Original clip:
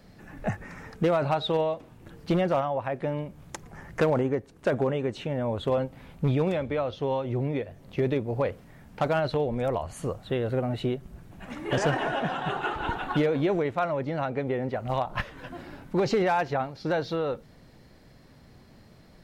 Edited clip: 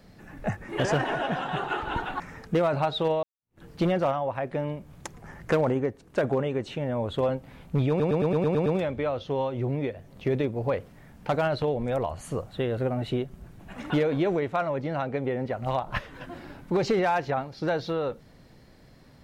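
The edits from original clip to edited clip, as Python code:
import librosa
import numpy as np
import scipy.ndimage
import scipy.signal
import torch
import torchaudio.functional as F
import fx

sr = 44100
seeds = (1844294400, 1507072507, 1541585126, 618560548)

y = fx.edit(x, sr, fx.fade_in_span(start_s=1.72, length_s=0.39, curve='exp'),
    fx.stutter(start_s=6.38, slice_s=0.11, count=8),
    fx.move(start_s=11.62, length_s=1.51, to_s=0.69), tone=tone)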